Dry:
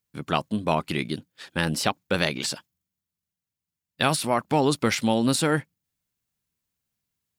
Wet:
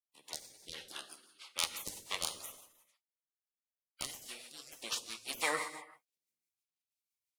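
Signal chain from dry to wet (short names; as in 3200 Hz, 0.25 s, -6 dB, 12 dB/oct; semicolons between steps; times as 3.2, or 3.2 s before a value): added harmonics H 2 -6 dB, 3 -14 dB, 4 -15 dB, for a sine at -4.5 dBFS; high-pass sweep 2600 Hz -> 370 Hz, 4.97–7.07; harmonic tremolo 1.4 Hz, depth 50%, crossover 2200 Hz; soft clip -16.5 dBFS, distortion -10 dB; resonant high shelf 2100 Hz -10 dB, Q 3; 4.04–4.77 compressor, threshold -42 dBFS, peak gain reduction 7.5 dB; non-linear reverb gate 0.42 s falling, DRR 7 dB; spectral gate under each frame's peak -20 dB weak; rotary speaker horn 6 Hz; gain +17.5 dB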